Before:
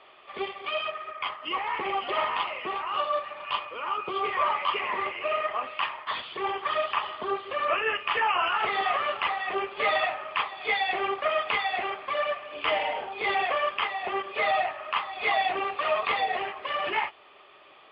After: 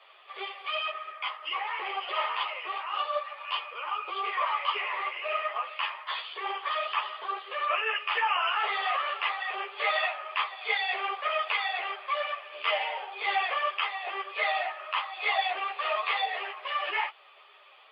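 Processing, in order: HPF 440 Hz 24 dB/oct; tilt +2 dB/oct; ensemble effect

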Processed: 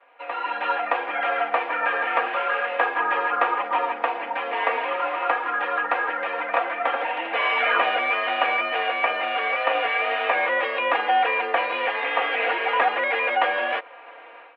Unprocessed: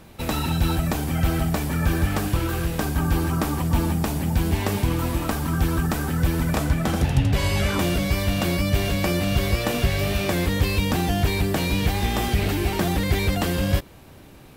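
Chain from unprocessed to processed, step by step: comb 4.4 ms, depth 89%; vibrato 0.4 Hz 18 cents; mistuned SSB +54 Hz 510–2600 Hz; AGC gain up to 13.5 dB; gain -4.5 dB

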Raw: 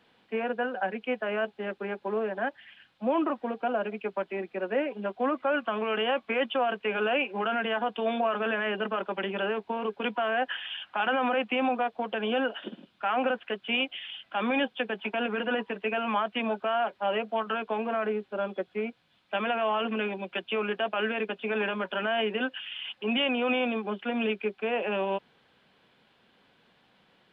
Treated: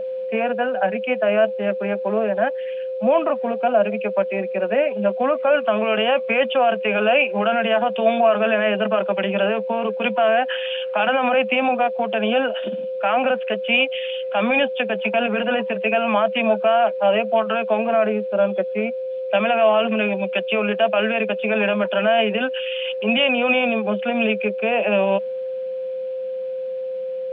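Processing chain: whine 520 Hz -32 dBFS; thirty-one-band EQ 200 Hz +8 dB, 315 Hz -8 dB, 630 Hz +11 dB, 2500 Hz +7 dB; gain +5 dB

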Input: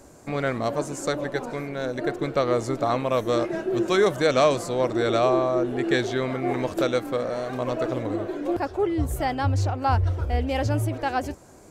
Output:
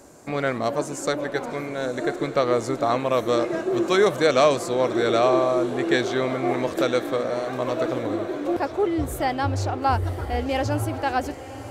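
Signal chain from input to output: low shelf 98 Hz -10.5 dB; on a send: diffused feedback echo 0.999 s, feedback 53%, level -14 dB; on the sum: gain +2 dB

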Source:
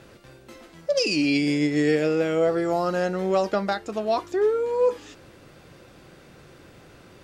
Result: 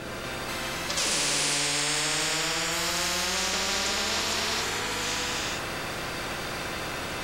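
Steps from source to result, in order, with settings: non-linear reverb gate 0.48 s flat, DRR -7 dB; spectral compressor 10:1; gain -8 dB

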